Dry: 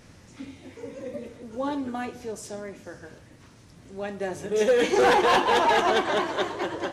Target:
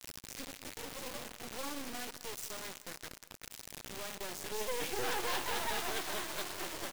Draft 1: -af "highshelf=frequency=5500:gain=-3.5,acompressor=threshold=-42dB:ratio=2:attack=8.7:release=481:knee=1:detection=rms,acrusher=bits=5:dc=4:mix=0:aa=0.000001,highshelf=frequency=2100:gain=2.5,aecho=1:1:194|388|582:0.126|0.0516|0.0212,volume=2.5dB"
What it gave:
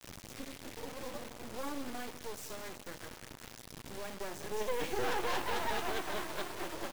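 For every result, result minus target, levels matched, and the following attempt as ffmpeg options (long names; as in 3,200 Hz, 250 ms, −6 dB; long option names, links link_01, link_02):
downward compressor: peak gain reduction −3.5 dB; 4,000 Hz band −2.5 dB
-af "highshelf=frequency=5500:gain=-3.5,acompressor=threshold=-49dB:ratio=2:attack=8.7:release=481:knee=1:detection=rms,acrusher=bits=5:dc=4:mix=0:aa=0.000001,highshelf=frequency=2100:gain=2.5,aecho=1:1:194|388|582:0.126|0.0516|0.0212,volume=2.5dB"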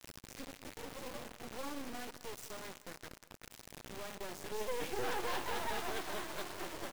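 4,000 Hz band −2.5 dB
-af "highshelf=frequency=5500:gain=-3.5,acompressor=threshold=-49dB:ratio=2:attack=8.7:release=481:knee=1:detection=rms,acrusher=bits=5:dc=4:mix=0:aa=0.000001,highshelf=frequency=2100:gain=10,aecho=1:1:194|388|582:0.126|0.0516|0.0212,volume=2.5dB"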